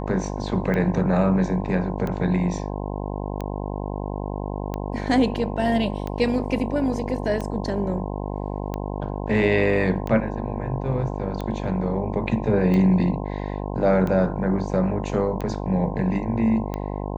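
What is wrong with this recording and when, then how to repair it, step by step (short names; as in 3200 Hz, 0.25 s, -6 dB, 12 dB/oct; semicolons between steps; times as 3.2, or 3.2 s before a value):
buzz 50 Hz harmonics 21 -29 dBFS
tick 45 rpm -16 dBFS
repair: de-click; de-hum 50 Hz, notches 21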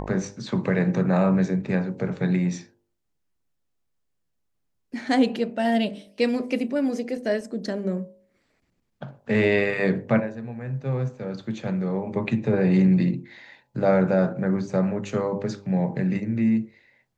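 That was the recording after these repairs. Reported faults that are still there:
none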